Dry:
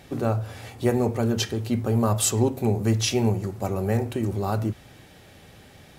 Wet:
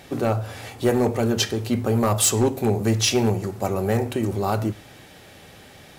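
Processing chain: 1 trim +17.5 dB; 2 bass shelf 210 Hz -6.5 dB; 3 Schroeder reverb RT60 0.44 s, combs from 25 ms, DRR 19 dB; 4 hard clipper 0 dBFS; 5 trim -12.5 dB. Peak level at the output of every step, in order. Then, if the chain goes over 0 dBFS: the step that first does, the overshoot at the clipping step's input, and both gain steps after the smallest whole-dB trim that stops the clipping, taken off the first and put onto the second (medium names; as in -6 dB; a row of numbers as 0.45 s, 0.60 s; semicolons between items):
+9.5 dBFS, +8.0 dBFS, +8.0 dBFS, 0.0 dBFS, -12.5 dBFS; step 1, 8.0 dB; step 1 +9.5 dB, step 5 -4.5 dB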